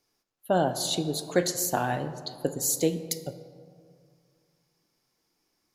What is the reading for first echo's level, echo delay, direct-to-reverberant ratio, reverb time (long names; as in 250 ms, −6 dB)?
no echo audible, no echo audible, 10.0 dB, 2.3 s